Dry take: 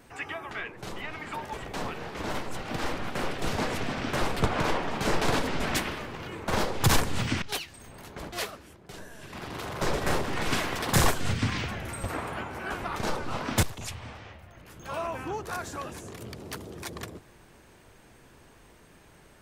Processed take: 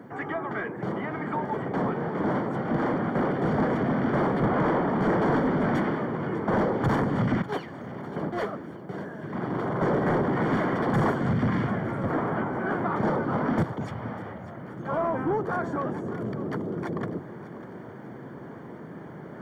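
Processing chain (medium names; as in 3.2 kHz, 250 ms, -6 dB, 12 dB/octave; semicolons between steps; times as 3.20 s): high-pass 140 Hz 24 dB/octave; bass shelf 460 Hz +11 dB; reverse; upward compressor, threshold -38 dBFS; reverse; saturation -24.5 dBFS, distortion -7 dB; added noise violet -59 dBFS; Savitzky-Golay filter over 41 samples; on a send: thinning echo 597 ms, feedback 40%, level -14.5 dB; on the sum: trim +5 dB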